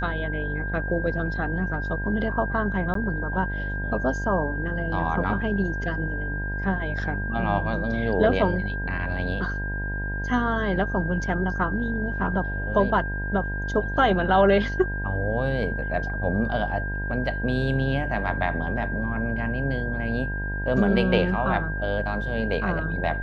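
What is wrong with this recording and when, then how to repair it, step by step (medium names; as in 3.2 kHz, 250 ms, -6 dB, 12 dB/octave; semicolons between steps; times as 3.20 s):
buzz 50 Hz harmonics 20 -30 dBFS
whine 1.6 kHz -31 dBFS
2.94–2.95 s: dropout 13 ms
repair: band-stop 1.6 kHz, Q 30; de-hum 50 Hz, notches 20; interpolate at 2.94 s, 13 ms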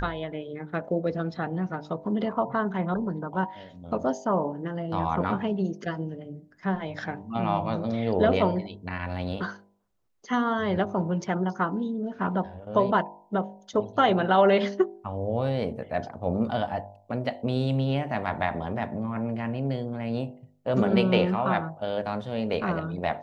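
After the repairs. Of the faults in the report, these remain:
nothing left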